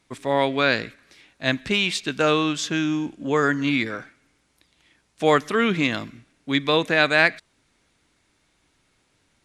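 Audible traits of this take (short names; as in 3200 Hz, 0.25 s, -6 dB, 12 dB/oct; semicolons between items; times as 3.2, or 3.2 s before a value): SBC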